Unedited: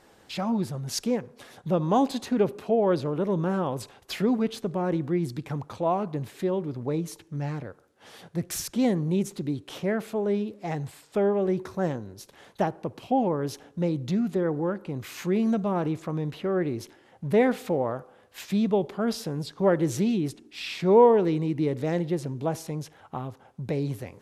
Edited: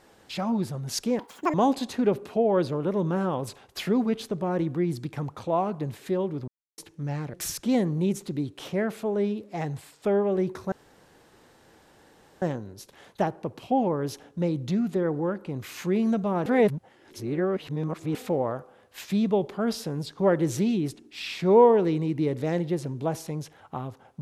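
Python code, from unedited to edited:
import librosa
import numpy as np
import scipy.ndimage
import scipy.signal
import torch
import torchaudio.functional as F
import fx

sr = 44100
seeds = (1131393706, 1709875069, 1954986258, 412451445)

y = fx.edit(x, sr, fx.speed_span(start_s=1.19, length_s=0.68, speed=1.95),
    fx.silence(start_s=6.81, length_s=0.3),
    fx.cut(start_s=7.67, length_s=0.77),
    fx.insert_room_tone(at_s=11.82, length_s=1.7),
    fx.reverse_span(start_s=15.86, length_s=1.69), tone=tone)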